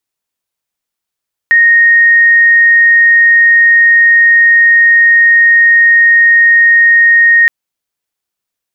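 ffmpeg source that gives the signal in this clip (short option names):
-f lavfi -i "aevalsrc='0.708*sin(2*PI*1860*t)':d=5.97:s=44100"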